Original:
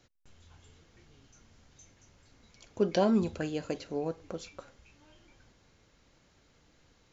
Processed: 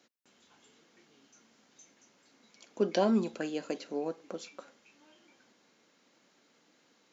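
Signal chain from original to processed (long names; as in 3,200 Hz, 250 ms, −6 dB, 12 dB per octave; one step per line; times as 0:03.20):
Chebyshev high-pass filter 220 Hz, order 3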